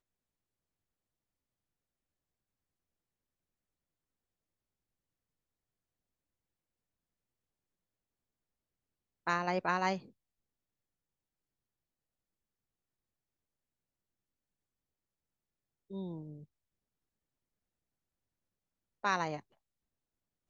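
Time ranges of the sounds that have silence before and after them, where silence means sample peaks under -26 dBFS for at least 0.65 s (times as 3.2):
9.27–9.94
19.05–19.27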